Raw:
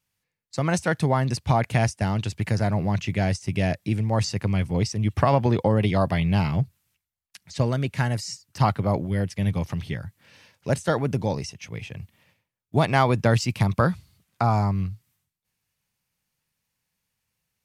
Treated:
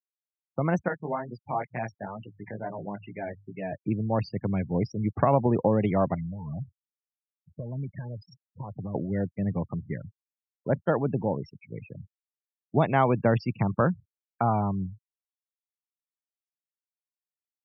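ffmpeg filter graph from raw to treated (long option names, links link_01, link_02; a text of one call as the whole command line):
ffmpeg -i in.wav -filter_complex "[0:a]asettb=1/sr,asplit=3[link_01][link_02][link_03];[link_01]atrim=end=0.884[link_04];[link_02]atrim=start=0.88:end=3.73,asetpts=PTS-STARTPTS,afade=type=in:duration=0.004:curve=qsin,afade=type=out:start_time=2.846:duration=0.004:curve=qsin,bandreject=frequency=50:width_type=h:width=6,bandreject=frequency=100:width_type=h:width=6,bandreject=frequency=150:width_type=h:width=6,flanger=delay=16.5:depth=3.5:speed=2.2,lowshelf=frequency=320:gain=-11.5[link_05];[link_03]atrim=start=3.726[link_06];[link_04][link_05]acrossfade=duration=0.004:curve1=hsin:curve2=qsin[link_07];[link_07][link_06]acrossfade=duration=0.004:curve1=qsin:curve2=hsin,asettb=1/sr,asplit=3[link_08][link_09][link_10];[link_08]atrim=end=6.144[link_11];[link_09]atrim=start=6.14:end=8.95,asetpts=PTS-STARTPTS,afade=type=in:duration=0.004:curve=qsin,afade=type=out:start_time=2.806:duration=0.004:curve=qsin,lowshelf=frequency=320:gain=8,acompressor=threshold=-23dB:ratio=12:attack=3.2:release=140:knee=1:detection=peak,flanger=delay=0.7:depth=1.5:regen=29:speed=1.8:shape=triangular[link_12];[link_10]atrim=start=8.946[link_13];[link_11][link_12]acrossfade=duration=0.004:curve1=hsin:curve2=qsin[link_14];[link_14][link_13]acrossfade=duration=0.004:curve1=qsin:curve2=hsin,lowpass=frequency=1100:poles=1,afftfilt=real='re*gte(hypot(re,im),0.0178)':imag='im*gte(hypot(re,im),0.0178)':win_size=1024:overlap=0.75,highpass=150" out.wav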